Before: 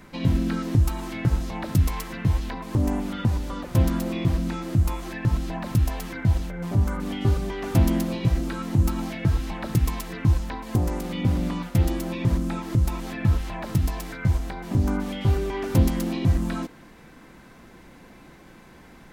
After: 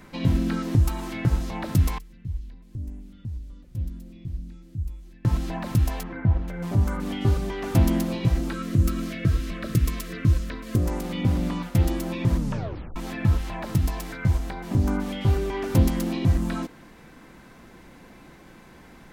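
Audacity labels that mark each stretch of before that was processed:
1.980000	5.250000	guitar amp tone stack bass-middle-treble 10-0-1
6.030000	6.480000	low-pass filter 1,600 Hz
8.530000	10.860000	Butterworth band-reject 850 Hz, Q 1.9
12.360000	12.360000	tape stop 0.60 s

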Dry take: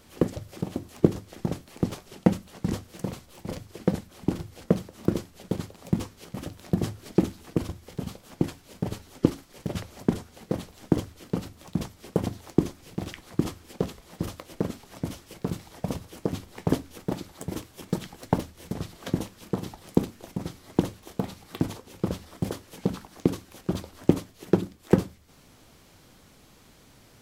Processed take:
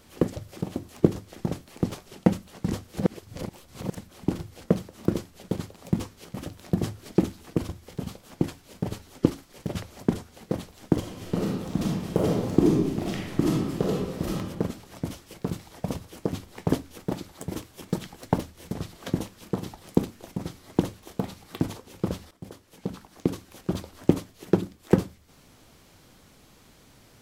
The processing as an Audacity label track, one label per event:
2.970000	3.970000	reverse
10.990000	14.330000	thrown reverb, RT60 1.3 s, DRR −4 dB
22.310000	23.580000	fade in linear, from −17 dB

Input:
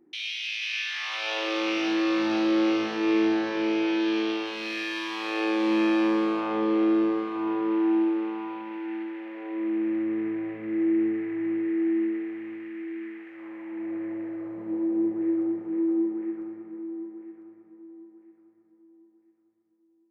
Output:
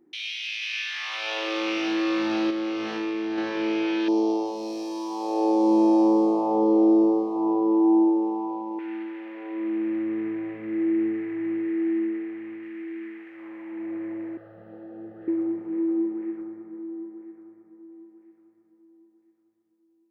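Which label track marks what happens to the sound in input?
2.500000	3.380000	downward compressor, threshold −25 dBFS
4.080000	8.790000	drawn EQ curve 130 Hz 0 dB, 910 Hz +9 dB, 1,500 Hz −30 dB, 3,500 Hz −14 dB, 5,300 Hz +2 dB
11.990000	12.630000	high-shelf EQ 5,000 Hz −8 dB
14.370000	15.280000	phaser with its sweep stopped centre 1,500 Hz, stages 8
16.410000	17.920000	parametric band 2,900 Hz −8 dB

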